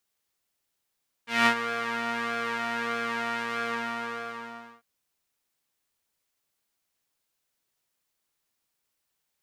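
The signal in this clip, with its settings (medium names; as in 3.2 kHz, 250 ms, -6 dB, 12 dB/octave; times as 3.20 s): synth patch with pulse-width modulation A#3, interval 0 st, detune 9 cents, sub -10.5 dB, noise -15 dB, filter bandpass, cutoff 1.2 kHz, Q 1.5, filter envelope 1 oct, attack 193 ms, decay 0.08 s, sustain -12 dB, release 1.19 s, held 2.36 s, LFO 1.6 Hz, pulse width 34%, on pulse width 10%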